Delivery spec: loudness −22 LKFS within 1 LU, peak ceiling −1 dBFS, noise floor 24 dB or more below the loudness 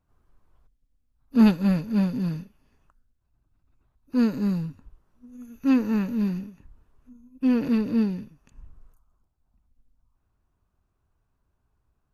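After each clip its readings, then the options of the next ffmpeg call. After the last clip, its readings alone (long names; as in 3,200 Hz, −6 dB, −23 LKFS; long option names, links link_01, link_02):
integrated loudness −24.0 LKFS; sample peak −7.0 dBFS; target loudness −22.0 LKFS
→ -af "volume=2dB"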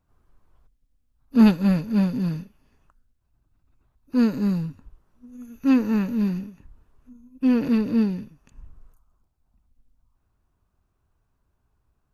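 integrated loudness −22.0 LKFS; sample peak −5.0 dBFS; background noise floor −72 dBFS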